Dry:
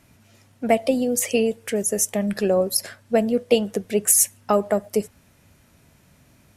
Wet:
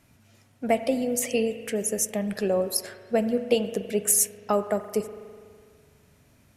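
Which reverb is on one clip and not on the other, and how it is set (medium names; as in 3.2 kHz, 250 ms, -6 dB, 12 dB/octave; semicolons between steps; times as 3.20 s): spring tank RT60 2 s, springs 41 ms, chirp 75 ms, DRR 10 dB; trim -4.5 dB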